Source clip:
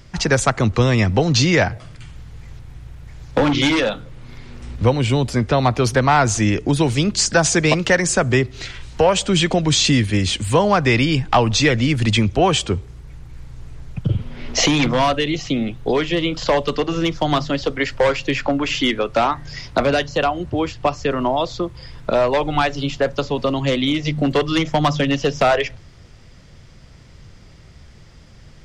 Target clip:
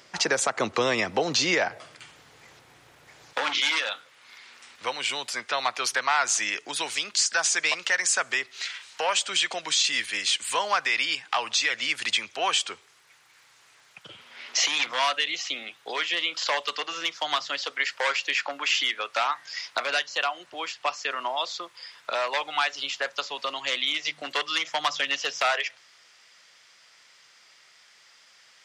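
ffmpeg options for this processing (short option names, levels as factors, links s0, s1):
-af "asetnsamples=n=441:p=0,asendcmd='3.33 highpass f 1300',highpass=470,alimiter=limit=0.224:level=0:latency=1:release=143"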